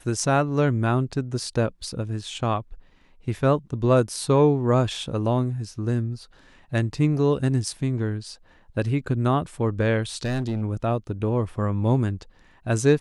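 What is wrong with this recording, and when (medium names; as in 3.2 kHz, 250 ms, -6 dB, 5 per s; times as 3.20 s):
10.24–10.62 s: clipped -21.5 dBFS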